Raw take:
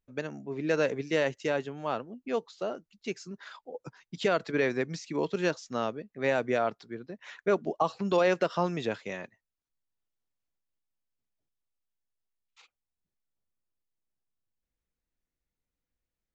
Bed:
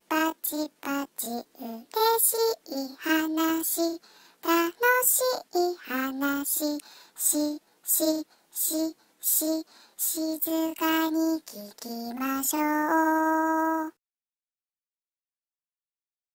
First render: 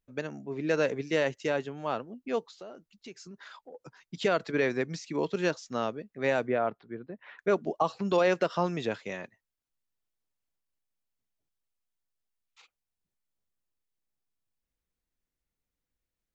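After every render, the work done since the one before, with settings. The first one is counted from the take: 2.51–4.02 compressor 3:1, threshold -44 dBFS; 6.47–7.39 Gaussian blur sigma 3 samples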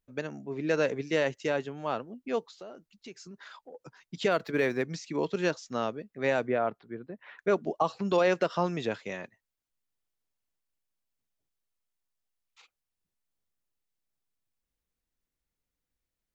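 4.31–4.85 median filter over 5 samples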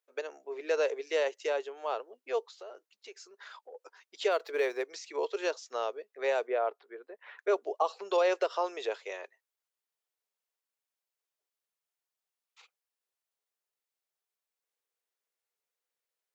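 elliptic high-pass 410 Hz, stop band 70 dB; dynamic EQ 1700 Hz, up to -5 dB, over -44 dBFS, Q 1.4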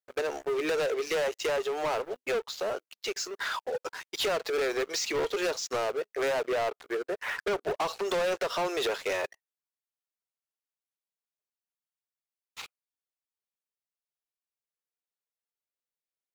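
compressor 2.5:1, threshold -39 dBFS, peak gain reduction 11 dB; sample leveller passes 5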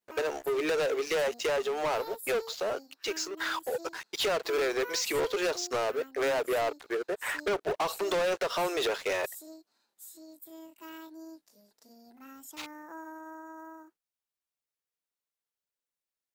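add bed -21 dB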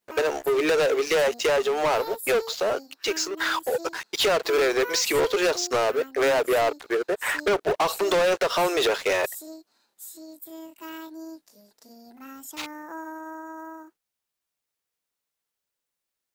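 gain +7 dB

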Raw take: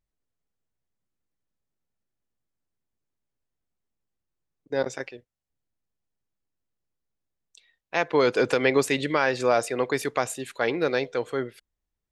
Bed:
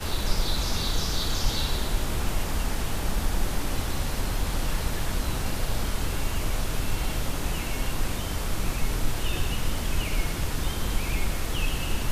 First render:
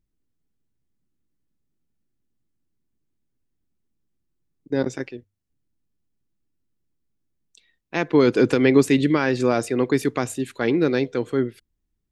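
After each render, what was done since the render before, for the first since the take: resonant low shelf 420 Hz +9 dB, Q 1.5; notches 50/100 Hz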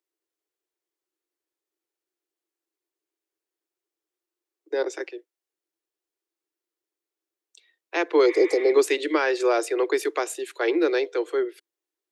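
steep high-pass 320 Hz 96 dB/oct; 8.28–8.68 spectral repair 880–3900 Hz after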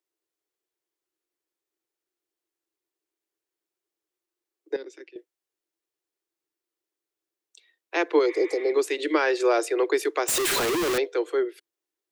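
4.76–5.16 EQ curve 200 Hz 0 dB, 440 Hz -14 dB, 720 Hz -25 dB, 2700 Hz -9 dB, 7200 Hz -14 dB; 8.19–8.99 gain -4.5 dB; 10.28–10.98 infinite clipping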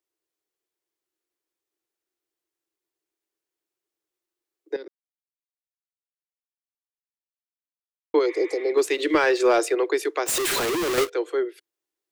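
4.88–8.14 mute; 8.77–9.75 sample leveller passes 1; 10.26–11.1 half-waves squared off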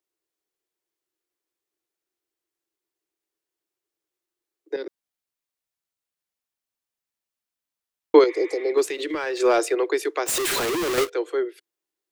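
4.77–8.24 gain +7 dB; 8.85–9.37 compressor 4:1, threshold -25 dBFS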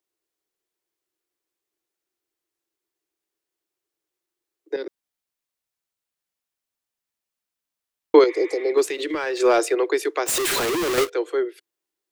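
gain +1.5 dB; limiter -2 dBFS, peak gain reduction 1.5 dB

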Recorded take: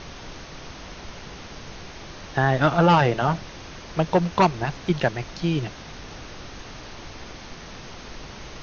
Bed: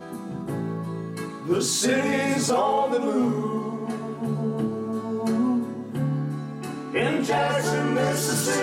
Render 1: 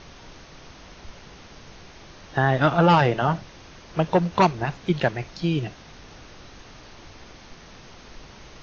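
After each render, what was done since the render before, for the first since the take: noise print and reduce 6 dB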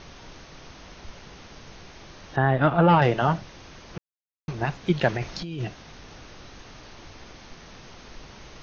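2.36–3.02 air absorption 320 m; 3.98–4.48 mute; 5.08–5.65 negative-ratio compressor -30 dBFS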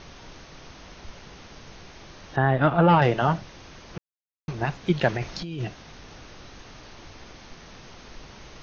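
nothing audible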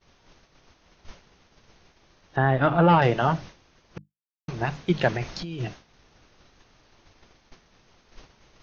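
notches 50/100/150/200/250/300 Hz; expander -35 dBFS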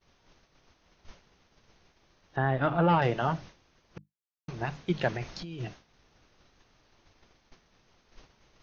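gain -6 dB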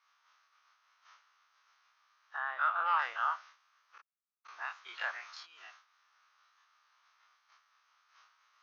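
spectral dilation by 60 ms; ladder high-pass 1100 Hz, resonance 65%

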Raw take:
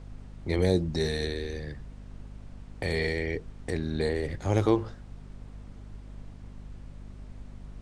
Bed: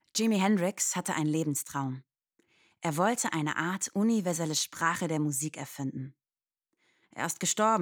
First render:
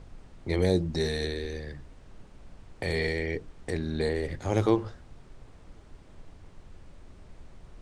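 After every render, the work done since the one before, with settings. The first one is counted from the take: notches 50/100/150/200/250/300 Hz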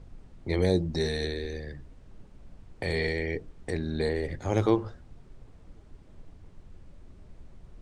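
denoiser 6 dB, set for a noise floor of -52 dBFS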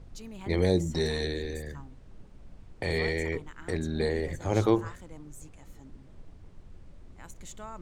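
add bed -18 dB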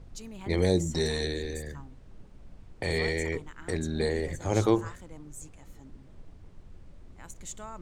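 dynamic EQ 7600 Hz, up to +7 dB, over -57 dBFS, Q 1.2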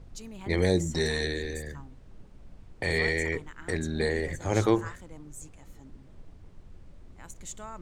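dynamic EQ 1800 Hz, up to +6 dB, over -49 dBFS, Q 1.9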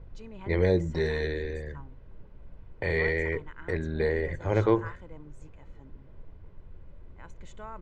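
LPF 2400 Hz 12 dB/oct; comb 2 ms, depth 34%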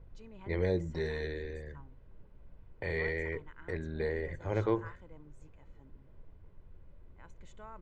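gain -7 dB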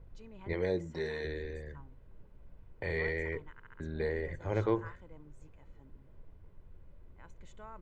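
0.53–1.25 HPF 200 Hz 6 dB/oct; 3.52 stutter in place 0.07 s, 4 plays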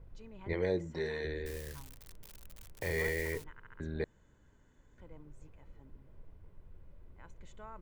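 1.46–3.44 switching spikes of -35.5 dBFS; 4.04–4.98 room tone

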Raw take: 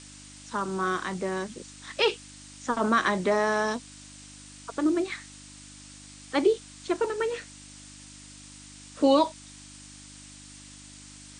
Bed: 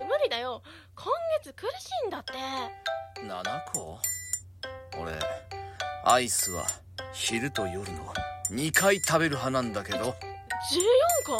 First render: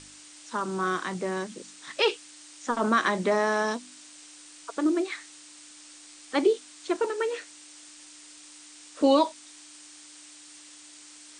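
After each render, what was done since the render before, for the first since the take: de-hum 50 Hz, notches 5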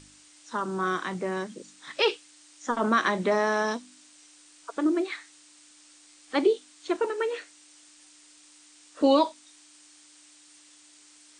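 noise print and reduce 6 dB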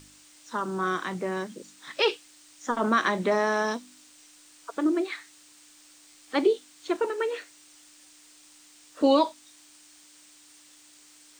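requantised 10-bit, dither none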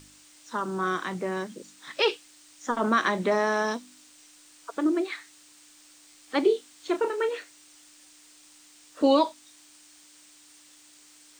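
6.43–7.29 doubler 31 ms -9 dB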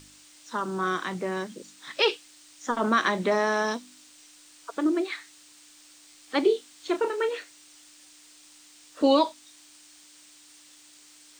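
bell 3900 Hz +2.5 dB 1.5 oct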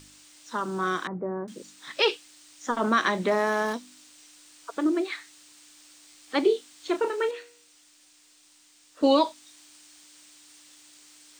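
1.07–1.48 Bessel low-pass 850 Hz, order 6; 3.28–3.74 median filter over 9 samples; 7.31–9.03 resonator 53 Hz, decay 0.57 s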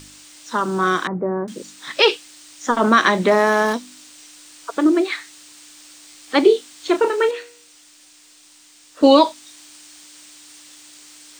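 gain +9 dB; limiter -2 dBFS, peak gain reduction 1 dB

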